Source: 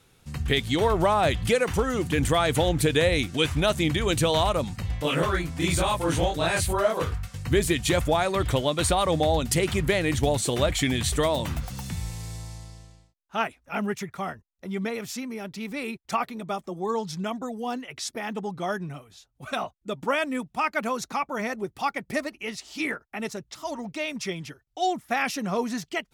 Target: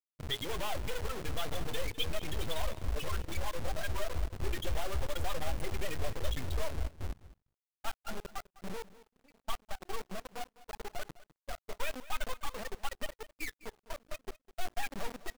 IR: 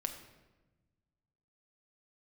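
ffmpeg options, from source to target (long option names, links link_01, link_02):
-filter_complex "[0:a]highpass=frequency=40:width=0.5412,highpass=frequency=40:width=1.3066,afftfilt=real='re*gte(hypot(re,im),0.2)':imag='im*gte(hypot(re,im),0.2)':win_size=1024:overlap=0.75,equalizer=frequency=260:width_type=o:width=0.89:gain=-9,bandreject=frequency=60:width_type=h:width=6,bandreject=frequency=120:width_type=h:width=6,bandreject=frequency=180:width_type=h:width=6,bandreject=frequency=240:width_type=h:width=6,bandreject=frequency=300:width_type=h:width=6,bandreject=frequency=360:width_type=h:width=6,bandreject=frequency=420:width_type=h:width=6,bandreject=frequency=480:width_type=h:width=6,aeval=exprs='(tanh(25.1*val(0)+0.5)-tanh(0.5))/25.1':channel_layout=same,asplit=2[link_01][link_02];[link_02]acompressor=threshold=-44dB:ratio=8,volume=-0.5dB[link_03];[link_01][link_03]amix=inputs=2:normalize=0,lowpass=frequency=3400:width_type=q:width=3.5,flanger=delay=7.3:depth=7.3:regen=-61:speed=0.32:shape=sinusoidal,asubboost=boost=8.5:cutoff=51,atempo=1.7,acrusher=bits=7:dc=4:mix=0:aa=0.000001,aecho=1:1:204:0.126,volume=-4.5dB"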